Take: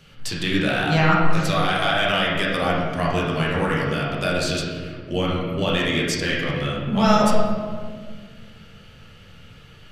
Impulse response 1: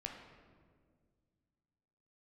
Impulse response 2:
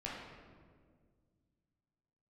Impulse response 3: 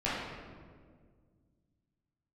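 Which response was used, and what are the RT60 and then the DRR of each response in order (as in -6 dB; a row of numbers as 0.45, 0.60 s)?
2; 1.8, 1.8, 1.8 s; 1.0, -6.0, -10.5 dB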